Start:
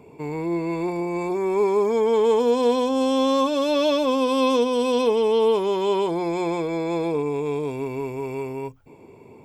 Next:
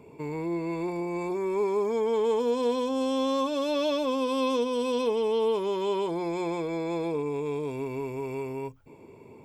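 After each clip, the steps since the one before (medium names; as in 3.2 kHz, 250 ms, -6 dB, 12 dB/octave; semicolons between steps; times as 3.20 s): band-stop 750 Hz, Q 12; in parallel at -0.5 dB: compression, threshold -29 dBFS, peak gain reduction 13 dB; on the sum: trim -8.5 dB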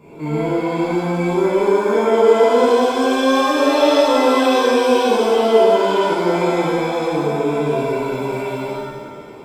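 pitch-shifted reverb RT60 1.5 s, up +7 st, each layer -8 dB, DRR -10 dB; trim +1.5 dB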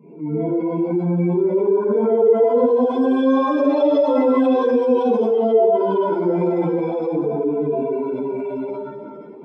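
spectral contrast enhancement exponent 1.8; resonant low shelf 130 Hz -13 dB, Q 3; trim -3.5 dB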